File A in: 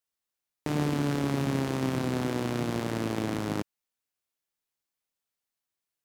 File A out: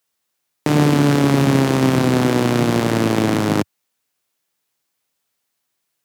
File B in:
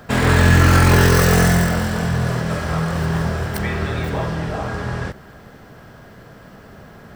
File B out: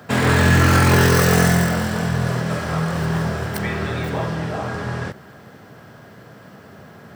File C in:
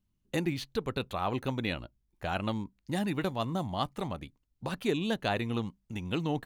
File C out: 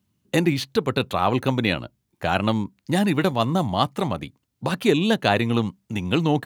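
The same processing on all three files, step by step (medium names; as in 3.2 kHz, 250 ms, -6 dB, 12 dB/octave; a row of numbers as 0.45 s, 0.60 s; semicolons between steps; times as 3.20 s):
high-pass 89 Hz 24 dB/octave; peak normalisation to -3 dBFS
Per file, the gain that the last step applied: +13.5 dB, -0.5 dB, +11.0 dB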